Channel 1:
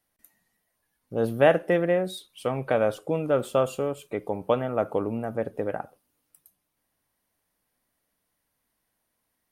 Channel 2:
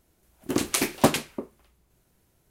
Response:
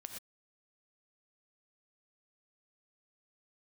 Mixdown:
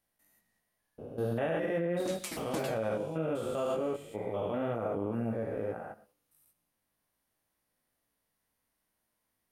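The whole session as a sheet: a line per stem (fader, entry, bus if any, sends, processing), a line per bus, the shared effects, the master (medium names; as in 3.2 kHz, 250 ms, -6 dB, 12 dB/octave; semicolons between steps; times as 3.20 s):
-1.5 dB, 0.00 s, send -5.5 dB, spectrogram pixelated in time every 200 ms; chorus 2.1 Hz, delay 17.5 ms, depth 2.4 ms
-7.5 dB, 1.50 s, send -4.5 dB, feedback comb 180 Hz, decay 0.22 s, harmonics all, mix 90%; vibrato with a chosen wave saw down 4.6 Hz, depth 250 cents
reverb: on, pre-delay 3 ms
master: peak limiter -23.5 dBFS, peak gain reduction 9 dB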